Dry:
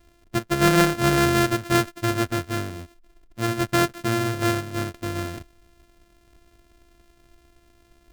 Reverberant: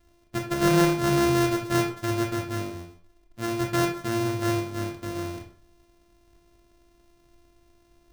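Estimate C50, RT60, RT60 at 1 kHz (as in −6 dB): 7.5 dB, 0.50 s, 0.50 s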